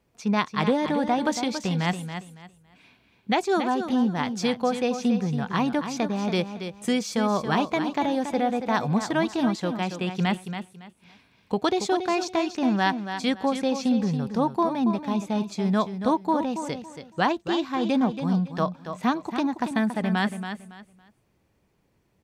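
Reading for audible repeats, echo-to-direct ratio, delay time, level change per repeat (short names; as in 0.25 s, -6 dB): 3, -8.5 dB, 0.279 s, -12.0 dB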